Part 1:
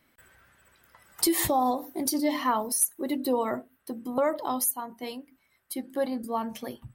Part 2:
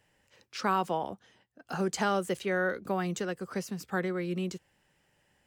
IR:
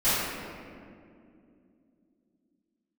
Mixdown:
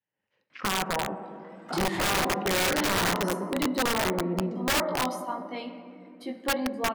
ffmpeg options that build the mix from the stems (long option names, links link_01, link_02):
-filter_complex "[0:a]lowshelf=frequency=360:gain=-4.5,flanger=delay=19.5:depth=2.1:speed=1.6,adelay=500,volume=-4.5dB,asplit=2[link_01][link_02];[link_02]volume=-23dB[link_03];[1:a]afwtdn=0.0141,adynamicequalizer=threshold=0.00501:dfrequency=630:dqfactor=2.6:tfrequency=630:tqfactor=2.6:attack=5:release=100:ratio=0.375:range=1.5:mode=cutabove:tftype=bell,alimiter=limit=-22dB:level=0:latency=1:release=48,volume=-6dB,asplit=3[link_04][link_05][link_06];[link_04]atrim=end=3.44,asetpts=PTS-STARTPTS,afade=type=out:start_time=3.436:duration=0.004:curve=hsin[link_07];[link_05]atrim=start=3.44:end=4.05,asetpts=PTS-STARTPTS,volume=0[link_08];[link_06]atrim=start=4.05,asetpts=PTS-STARTPTS,afade=type=in:duration=0.004:curve=hsin[link_09];[link_07][link_08][link_09]concat=n=3:v=0:a=1,asplit=3[link_10][link_11][link_12];[link_11]volume=-22dB[link_13];[link_12]apad=whole_len=328354[link_14];[link_01][link_14]sidechaincompress=threshold=-43dB:ratio=16:attack=16:release=152[link_15];[2:a]atrim=start_sample=2205[link_16];[link_03][link_13]amix=inputs=2:normalize=0[link_17];[link_17][link_16]afir=irnorm=-1:irlink=0[link_18];[link_15][link_10][link_18]amix=inputs=3:normalize=0,dynaudnorm=framelen=120:gausssize=3:maxgain=10dB,highpass=120,lowpass=3100,aeval=exprs='(mod(9.44*val(0)+1,2)-1)/9.44':channel_layout=same"